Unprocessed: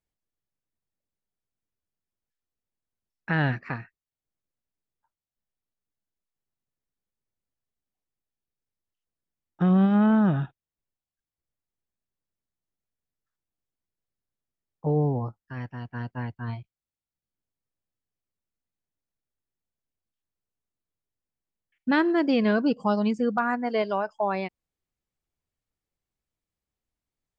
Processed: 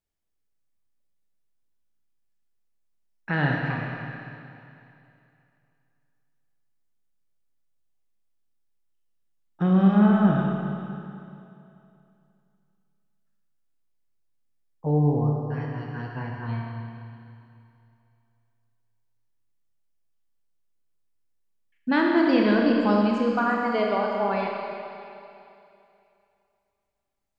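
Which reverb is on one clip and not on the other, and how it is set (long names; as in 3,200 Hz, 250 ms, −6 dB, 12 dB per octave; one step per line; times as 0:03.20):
four-comb reverb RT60 2.7 s, combs from 27 ms, DRR −1 dB
level −1 dB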